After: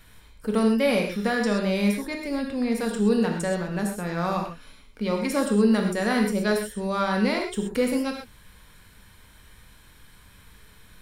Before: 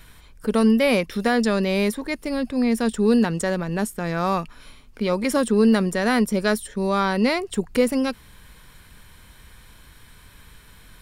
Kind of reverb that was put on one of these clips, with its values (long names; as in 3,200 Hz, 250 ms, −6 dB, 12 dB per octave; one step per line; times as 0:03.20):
reverb whose tail is shaped and stops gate 150 ms flat, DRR 1.5 dB
level −5.5 dB